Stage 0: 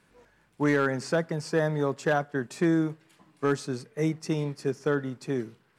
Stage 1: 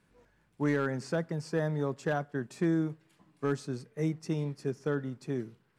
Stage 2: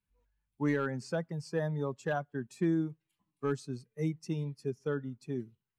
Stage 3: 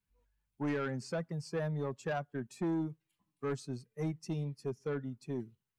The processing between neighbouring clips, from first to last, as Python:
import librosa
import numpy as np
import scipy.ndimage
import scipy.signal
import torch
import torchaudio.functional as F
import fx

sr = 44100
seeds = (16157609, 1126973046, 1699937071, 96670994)

y1 = fx.low_shelf(x, sr, hz=270.0, db=7.0)
y1 = y1 * librosa.db_to_amplitude(-7.5)
y2 = fx.bin_expand(y1, sr, power=1.5)
y3 = 10.0 ** (-28.5 / 20.0) * np.tanh(y2 / 10.0 ** (-28.5 / 20.0))